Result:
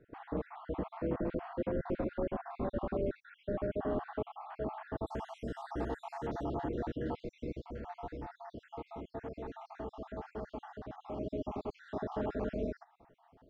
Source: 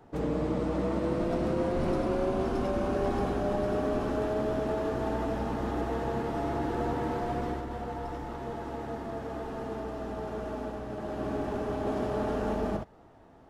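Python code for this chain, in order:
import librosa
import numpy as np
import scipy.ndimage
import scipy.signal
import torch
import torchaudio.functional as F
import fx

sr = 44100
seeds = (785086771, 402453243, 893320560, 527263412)

y = fx.spec_dropout(x, sr, seeds[0], share_pct=57)
y = fx.bessel_lowpass(y, sr, hz=fx.steps((0.0, 2200.0), (5.06, 8700.0), (6.43, 3900.0)), order=8)
y = F.gain(torch.from_numpy(y), -4.0).numpy()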